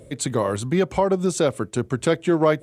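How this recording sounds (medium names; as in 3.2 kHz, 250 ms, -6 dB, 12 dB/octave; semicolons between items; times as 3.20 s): noise floor -47 dBFS; spectral tilt -5.5 dB/octave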